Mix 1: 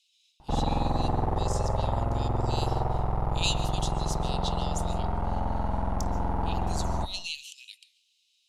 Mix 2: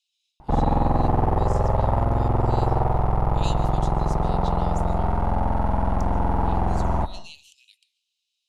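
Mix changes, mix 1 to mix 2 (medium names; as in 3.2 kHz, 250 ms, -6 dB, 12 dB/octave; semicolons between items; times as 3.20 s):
speech -9.0 dB; background +6.5 dB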